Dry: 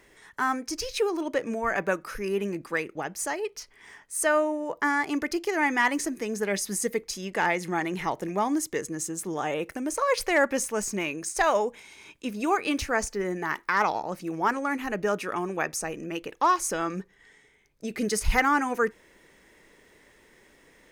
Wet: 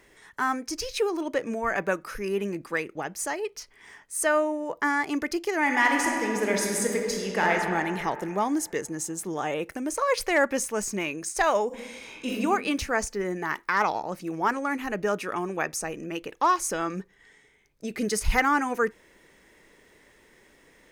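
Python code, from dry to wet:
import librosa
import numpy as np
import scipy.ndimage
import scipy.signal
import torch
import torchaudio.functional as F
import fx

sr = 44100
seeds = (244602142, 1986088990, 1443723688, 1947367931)

y = fx.reverb_throw(x, sr, start_s=5.61, length_s=1.9, rt60_s=2.6, drr_db=0.0)
y = fx.reverb_throw(y, sr, start_s=11.67, length_s=0.67, rt60_s=1.0, drr_db=-5.5)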